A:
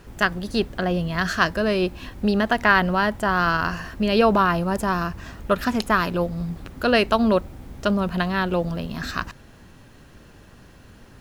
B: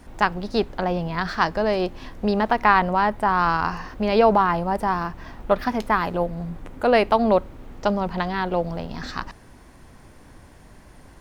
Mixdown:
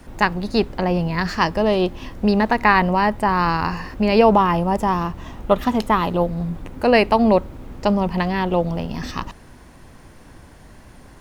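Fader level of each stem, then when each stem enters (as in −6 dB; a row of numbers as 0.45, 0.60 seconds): −5.5, +2.5 decibels; 0.00, 0.00 seconds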